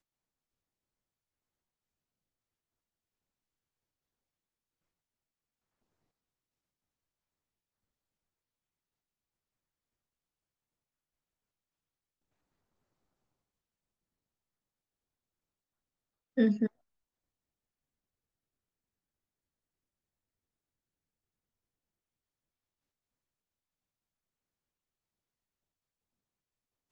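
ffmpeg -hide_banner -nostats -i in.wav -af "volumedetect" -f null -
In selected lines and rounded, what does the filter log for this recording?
mean_volume: -45.5 dB
max_volume: -14.8 dB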